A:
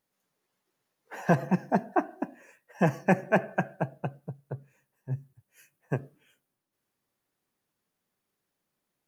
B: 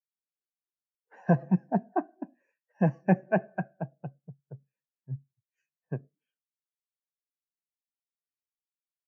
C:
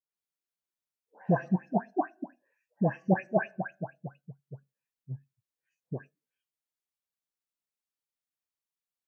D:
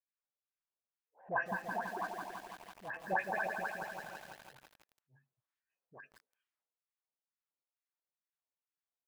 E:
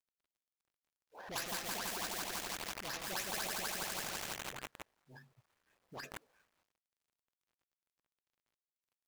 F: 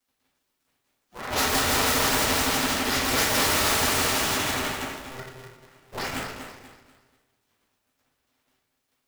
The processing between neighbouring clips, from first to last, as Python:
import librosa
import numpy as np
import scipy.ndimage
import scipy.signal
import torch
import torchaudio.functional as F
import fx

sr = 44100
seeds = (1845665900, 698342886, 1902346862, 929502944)

y1 = scipy.signal.sosfilt(scipy.signal.cheby1(2, 1.0, [150.0, 5400.0], 'bandpass', fs=sr, output='sos'), x)
y1 = fx.spectral_expand(y1, sr, expansion=1.5)
y2 = fx.dynamic_eq(y1, sr, hz=150.0, q=2.4, threshold_db=-38.0, ratio=4.0, max_db=-5)
y2 = fx.dispersion(y2, sr, late='highs', ms=147.0, hz=1600.0)
y3 = fx.filter_lfo_bandpass(y2, sr, shape='sine', hz=2.2, low_hz=570.0, high_hz=1800.0, q=1.5)
y3 = fx.transient(y3, sr, attack_db=-11, sustain_db=8)
y3 = fx.echo_crushed(y3, sr, ms=166, feedback_pct=80, bits=9, wet_db=-5.0)
y4 = scipy.ndimage.median_filter(y3, 15, mode='constant')
y4 = fx.spectral_comp(y4, sr, ratio=4.0)
y4 = F.gain(torch.from_numpy(y4), -2.5).numpy()
y5 = fx.echo_feedback(y4, sr, ms=243, feedback_pct=34, wet_db=-9.0)
y5 = fx.room_shoebox(y5, sr, seeds[0], volume_m3=180.0, walls='mixed', distance_m=3.3)
y5 = y5 * np.sign(np.sin(2.0 * np.pi * 260.0 * np.arange(len(y5)) / sr))
y5 = F.gain(torch.from_numpy(y5), 6.5).numpy()